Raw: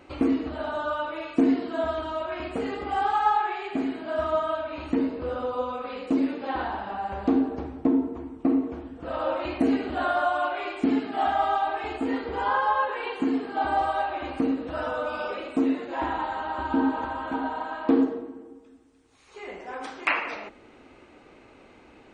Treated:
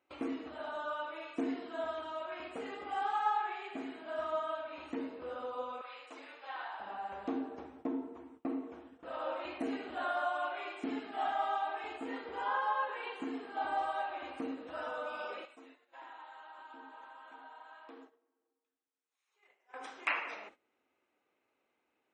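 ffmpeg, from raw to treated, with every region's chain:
ffmpeg -i in.wav -filter_complex "[0:a]asettb=1/sr,asplit=3[link_01][link_02][link_03];[link_01]atrim=end=5.814[link_04];[link_02]atrim=start=5.81:end=6.8,asetpts=PTS-STARTPTS,afade=type=in:duration=0.004:curve=qsin,afade=type=out:start_time=0.986:duration=0.004:curve=qsin,highpass=850,asplit=2[link_05][link_06];[link_06]adelay=39,volume=-12dB[link_07];[link_05][link_07]amix=inputs=2:normalize=0,atrim=end_sample=43659[link_08];[link_03]atrim=start=6.796[link_09];[link_04][link_08]acrossfade=duration=0.004:curve1=hsin:curve2=qsin[link_10];[link_10][link_09]acrossfade=duration=0.004:curve1=qsin:curve2=hsin,asettb=1/sr,asplit=3[link_11][link_12][link_13];[link_11]atrim=end=15.454[link_14];[link_12]atrim=start=15.45:end=19.74,asetpts=PTS-STARTPTS,afade=type=in:duration=0.004:curve=qsin,afade=type=out:start_time=4.286:duration=0.004:curve=qsin,highpass=frequency=990:poles=1,acompressor=threshold=-54dB:ratio=1.5:attack=3.2:release=140:knee=1:detection=peak[link_15];[link_13]atrim=start=19.736[link_16];[link_14][link_15]acrossfade=duration=0.004:curve1=hsin:curve2=qsin[link_17];[link_17][link_16]acrossfade=duration=0.004:curve1=qsin:curve2=hsin,highpass=frequency=570:poles=1,agate=range=-17dB:threshold=-47dB:ratio=16:detection=peak,bandreject=frequency=4500:width=8.2,volume=-8dB" out.wav

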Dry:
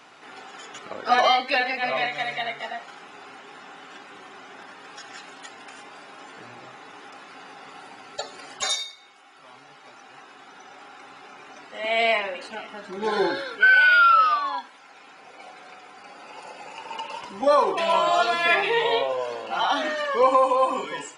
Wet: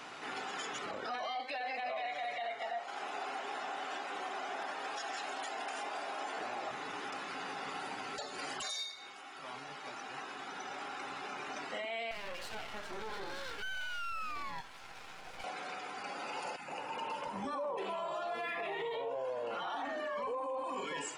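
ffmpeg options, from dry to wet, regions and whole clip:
ffmpeg -i in.wav -filter_complex "[0:a]asettb=1/sr,asplit=3[link_01][link_02][link_03];[link_01]atrim=end=1.354[link_04];[link_02]atrim=start=1.35:end=6.71,asetpts=PTS-STARTPTS,afade=type=in:duration=0.004:curve=qsin,afade=type=out:start_time=5.356:duration=0.004:curve=qsin,highpass=290,equalizer=frequency=700:width_type=o:width=0.54:gain=8[link_05];[link_03]atrim=start=6.706[link_06];[link_04][link_05]acrossfade=duration=0.004:curve1=hsin:curve2=qsin[link_07];[link_07][link_06]acrossfade=duration=0.004:curve1=qsin:curve2=hsin,asettb=1/sr,asplit=3[link_08][link_09][link_10];[link_08]atrim=end=12.114[link_11];[link_09]atrim=start=12.11:end=15.44,asetpts=PTS-STARTPTS,afade=type=in:duration=0.004:curve=qsin,afade=type=out:start_time=3.326:duration=0.004:curve=qsin,highpass=470,acompressor=threshold=-27dB:ratio=2.5:attack=3.2:release=140:knee=1:detection=peak,aeval=exprs='max(val(0),0)':channel_layout=same[link_12];[link_10]atrim=start=15.436[link_13];[link_11][link_12]acrossfade=duration=0.004:curve1=hsin:curve2=qsin[link_14];[link_14][link_13]acrossfade=duration=0.004:curve1=qsin:curve2=hsin,asettb=1/sr,asplit=3[link_15][link_16][link_17];[link_15]atrim=end=16.564[link_18];[link_16]atrim=start=16.56:end=20.64,asetpts=PTS-STARTPTS,afade=type=in:duration=0.004:curve=qsin,afade=type=out:start_time=4.076:duration=0.004:curve=qsin,equalizer=frequency=4800:width_type=o:width=2.4:gain=-10.5,acrossover=split=270|1000[link_19][link_20][link_21];[link_19]adelay=30[link_22];[link_20]adelay=120[link_23];[link_22][link_23][link_21]amix=inputs=3:normalize=0,atrim=end_sample=179928[link_24];[link_17]atrim=start=20.636[link_25];[link_18][link_24]acrossfade=duration=0.004:curve1=hsin:curve2=qsin[link_26];[link_26][link_25]acrossfade=duration=0.004:curve1=qsin:curve2=hsin,acompressor=threshold=-38dB:ratio=3,alimiter=level_in=9.5dB:limit=-24dB:level=0:latency=1:release=12,volume=-9.5dB,volume=2.5dB" out.wav

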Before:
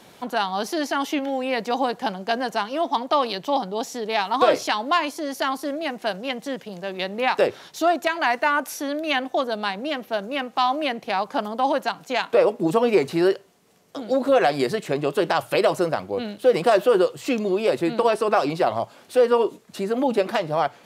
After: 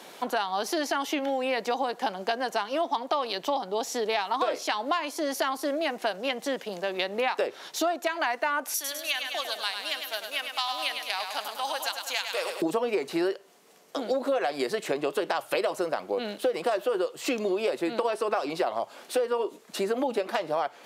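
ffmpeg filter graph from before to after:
ffmpeg -i in.wav -filter_complex "[0:a]asettb=1/sr,asplit=3[link_01][link_02][link_03];[link_01]atrim=end=8.744[link_04];[link_02]atrim=start=8.74:end=12.62,asetpts=PTS-STARTPTS,afade=type=in:duration=0.004:curve=qsin,afade=type=out:start_time=3.876:duration=0.004:curve=qsin,aderivative,aecho=1:1:102|204|306|408|510|612|714:0.447|0.259|0.15|0.0872|0.0505|0.0293|0.017,atrim=end_sample=171108,acontrast=34[link_05];[link_03]atrim=start=12.616[link_06];[link_04][link_05]acrossfade=duration=0.004:curve1=hsin:curve2=qsin[link_07];[link_07][link_06]acrossfade=duration=0.004:curve1=qsin:curve2=hsin,highpass=320,acompressor=threshold=-28dB:ratio=6,volume=3.5dB" out.wav

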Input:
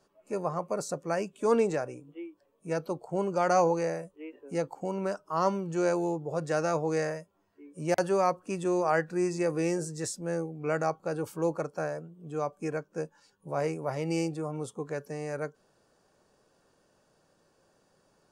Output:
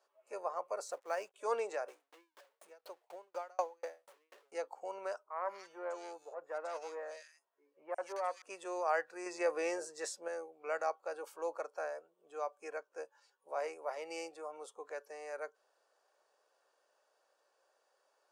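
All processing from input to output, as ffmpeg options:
ffmpeg -i in.wav -filter_complex "[0:a]asettb=1/sr,asplit=3[link_01][link_02][link_03];[link_01]atrim=end=0.874[link_04];[link_02]atrim=start=0.87:end=1.34,asetpts=PTS-STARTPTS,afade=type=in:duration=0.004:curve=qsin,afade=type=out:start_time=0.466:duration=0.004:curve=qsin,aeval=exprs='sgn(val(0))*max(abs(val(0))-0.00126,0)':channel_layout=same,acrusher=bits=7:mode=log:mix=0:aa=0.000001[link_05];[link_03]atrim=start=1.336[link_06];[link_04][link_05]acrossfade=duration=0.004:curve1=hsin:curve2=qsin[link_07];[link_07][link_06]acrossfade=duration=0.004:curve1=qsin:curve2=hsin,asettb=1/sr,asplit=3[link_08][link_09][link_10];[link_08]atrim=end=1.884[link_11];[link_09]atrim=start=1.88:end=4.52,asetpts=PTS-STARTPTS,afade=type=in:duration=0.004:curve=qsin,afade=type=out:start_time=2.636:duration=0.004:curve=qsin,aeval=exprs='val(0)+0.5*0.00944*sgn(val(0))':channel_layout=same,aeval=exprs='val(0)*pow(10,-39*if(lt(mod(4.1*n/s,1),2*abs(4.1)/1000),1-mod(4.1*n/s,1)/(2*abs(4.1)/1000),(mod(4.1*n/s,1)-2*abs(4.1)/1000)/(1-2*abs(4.1)/1000))/20)':channel_layout=same[link_12];[link_10]atrim=start=4.516[link_13];[link_11][link_12]acrossfade=duration=0.004:curve1=hsin:curve2=qsin[link_14];[link_14][link_13]acrossfade=duration=0.004:curve1=qsin:curve2=hsin,asettb=1/sr,asplit=3[link_15][link_16][link_17];[link_15]atrim=end=5.234[link_18];[link_16]atrim=start=5.23:end=8.42,asetpts=PTS-STARTPTS,afade=type=in:duration=0.004:curve=qsin,afade=type=out:start_time=3.186:duration=0.004:curve=qsin,aeval=exprs='(tanh(7.08*val(0)+0.75)-tanh(0.75))/7.08':channel_layout=same,acrossover=split=2100[link_19][link_20];[link_20]adelay=180[link_21];[link_19][link_21]amix=inputs=2:normalize=0,atrim=end_sample=140679[link_22];[link_17]atrim=start=8.416[link_23];[link_18][link_22]acrossfade=duration=0.004:curve1=hsin:curve2=qsin[link_24];[link_24][link_23]acrossfade=duration=0.004:curve1=qsin:curve2=hsin,asettb=1/sr,asplit=3[link_25][link_26][link_27];[link_25]atrim=end=9.264[link_28];[link_26]atrim=start=9.26:end=10.28,asetpts=PTS-STARTPTS,afade=type=in:duration=0.004:curve=qsin,afade=type=out:start_time=1.016:duration=0.004:curve=qsin,highshelf=frequency=5700:gain=-7,acontrast=48[link_29];[link_27]atrim=start=10.276[link_30];[link_28][link_29]acrossfade=duration=0.004:curve1=hsin:curve2=qsin[link_31];[link_31][link_30]acrossfade=duration=0.004:curve1=qsin:curve2=hsin,highpass=frequency=520:width=0.5412,highpass=frequency=520:width=1.3066,highshelf=frequency=5000:gain=-5.5,volume=-5dB" out.wav

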